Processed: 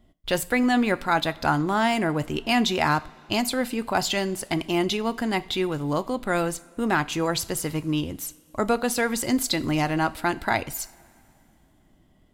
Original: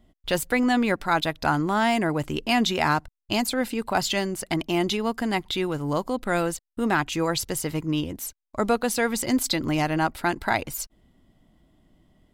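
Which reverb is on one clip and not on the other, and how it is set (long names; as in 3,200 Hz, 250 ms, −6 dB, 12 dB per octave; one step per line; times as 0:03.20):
coupled-rooms reverb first 0.37 s, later 2.8 s, from −18 dB, DRR 13 dB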